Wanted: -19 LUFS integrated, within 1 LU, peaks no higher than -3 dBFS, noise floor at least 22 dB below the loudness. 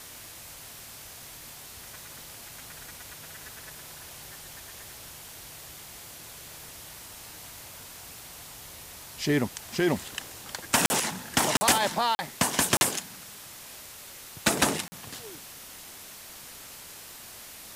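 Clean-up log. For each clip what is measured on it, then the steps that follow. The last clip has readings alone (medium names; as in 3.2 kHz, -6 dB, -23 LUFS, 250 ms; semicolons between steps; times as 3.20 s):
dropouts 5; longest dropout 40 ms; noise floor -45 dBFS; noise floor target -49 dBFS; loudness -26.5 LUFS; peak level -9.5 dBFS; loudness target -19.0 LUFS
-> interpolate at 10.86/11.57/12.15/12.77/14.88 s, 40 ms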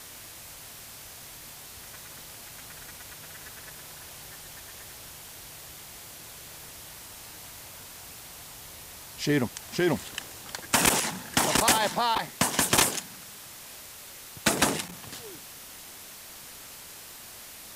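dropouts 0; noise floor -45 dBFS; noise floor target -48 dBFS
-> noise reduction 6 dB, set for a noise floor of -45 dBFS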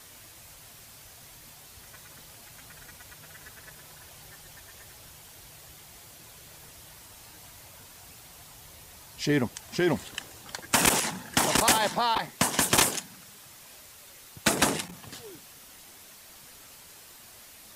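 noise floor -50 dBFS; loudness -25.5 LUFS; peak level -6.5 dBFS; loudness target -19.0 LUFS
-> trim +6.5 dB; peak limiter -3 dBFS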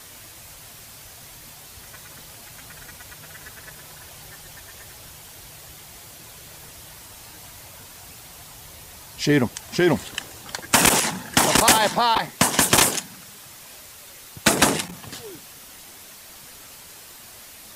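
loudness -19.5 LUFS; peak level -3.0 dBFS; noise floor -44 dBFS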